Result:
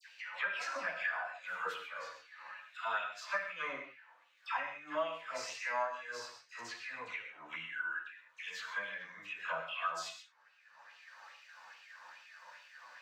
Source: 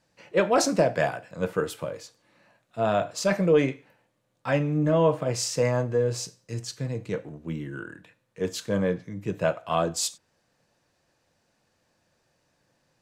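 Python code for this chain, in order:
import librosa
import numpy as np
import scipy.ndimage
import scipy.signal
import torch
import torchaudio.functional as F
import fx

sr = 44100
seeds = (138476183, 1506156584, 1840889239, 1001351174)

y = fx.high_shelf(x, sr, hz=4500.0, db=-7.5)
y = fx.hpss(y, sr, part='percussive', gain_db=-10)
y = fx.graphic_eq_15(y, sr, hz=(160, 400, 10000), db=(3, -7, -11))
y = fx.filter_lfo_highpass(y, sr, shape='sine', hz=2.4, low_hz=970.0, high_hz=2800.0, q=4.6)
y = fx.dispersion(y, sr, late='lows', ms=94.0, hz=1500.0)
y = fx.chorus_voices(y, sr, voices=4, hz=0.63, base_ms=11, depth_ms=1.6, mix_pct=50)
y = fx.rev_gated(y, sr, seeds[0], gate_ms=160, shape='flat', drr_db=6.5)
y = fx.band_squash(y, sr, depth_pct=70)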